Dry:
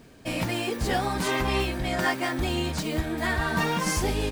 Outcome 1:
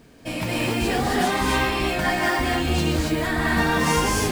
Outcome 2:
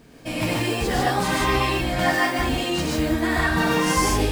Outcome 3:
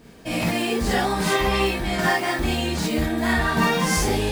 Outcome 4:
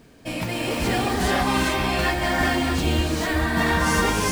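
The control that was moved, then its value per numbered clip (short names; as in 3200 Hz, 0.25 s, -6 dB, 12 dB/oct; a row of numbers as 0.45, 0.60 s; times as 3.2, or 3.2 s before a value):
non-linear reverb, gate: 310, 180, 80, 470 ms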